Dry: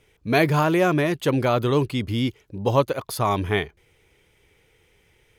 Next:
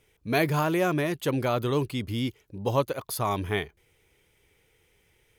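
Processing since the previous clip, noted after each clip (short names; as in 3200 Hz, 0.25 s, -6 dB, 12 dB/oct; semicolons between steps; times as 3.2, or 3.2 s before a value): high shelf 9100 Hz +9 dB; gain -5.5 dB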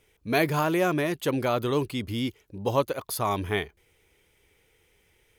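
bell 130 Hz -4 dB 0.7 oct; gain +1 dB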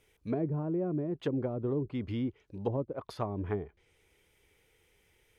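treble ducked by the level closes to 360 Hz, closed at -22 dBFS; gain -3.5 dB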